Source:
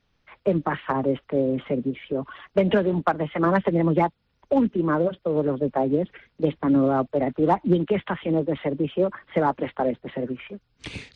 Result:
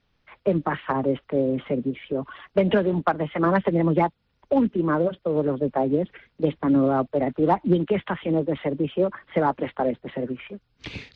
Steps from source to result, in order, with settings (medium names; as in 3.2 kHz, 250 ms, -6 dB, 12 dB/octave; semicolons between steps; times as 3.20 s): low-pass 5.7 kHz 24 dB/octave